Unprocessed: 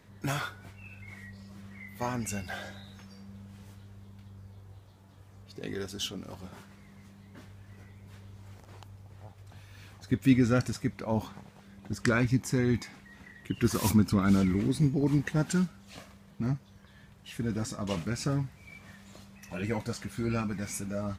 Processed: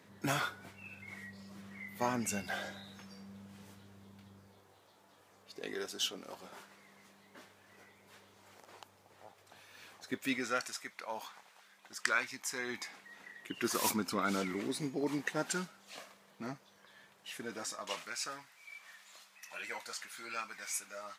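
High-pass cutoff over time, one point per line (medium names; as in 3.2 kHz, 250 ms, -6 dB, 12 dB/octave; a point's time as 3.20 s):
4.31 s 190 Hz
4.71 s 410 Hz
10.01 s 410 Hz
10.71 s 1 kHz
12.48 s 1 kHz
13.01 s 450 Hz
17.30 s 450 Hz
18.18 s 1.1 kHz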